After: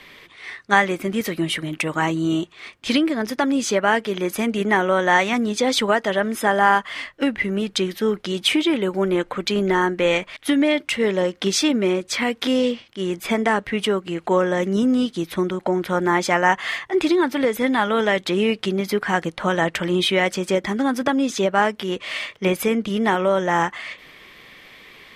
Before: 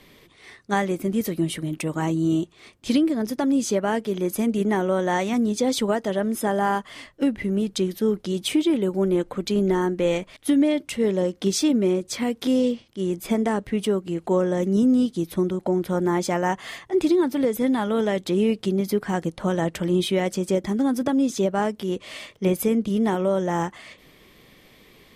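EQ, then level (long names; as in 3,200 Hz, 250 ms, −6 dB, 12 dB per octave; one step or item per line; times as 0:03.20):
parametric band 1,900 Hz +14 dB 2.9 octaves
−2.0 dB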